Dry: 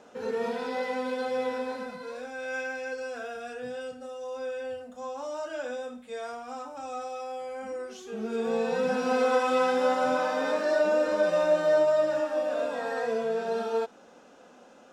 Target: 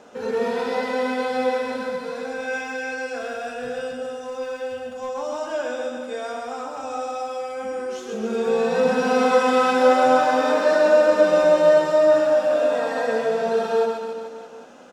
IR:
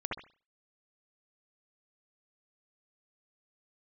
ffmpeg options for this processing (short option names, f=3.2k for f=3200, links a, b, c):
-filter_complex "[0:a]asettb=1/sr,asplit=3[a][b][c];[a]atrim=end=3.214[d];[b]atrim=start=3.21:end=5.09,asetpts=PTS-STARTPTS,afade=t=in:d=0.004:c=qsin,afade=t=out:st=1.876:d=0.004:c=qsin,asoftclip=type=hard:threshold=-31.5dB[e];[c]atrim=start=5.086[f];[d][e]acrossfade=d=0.004:c1=hsin:c2=qsin[g];[g][f]acrossfade=d=0.004:c1=qsin:c2=hsin,aecho=1:1:130|273|430.3|603.3|793.7:0.631|0.398|0.251|0.158|0.1,volume=5.5dB"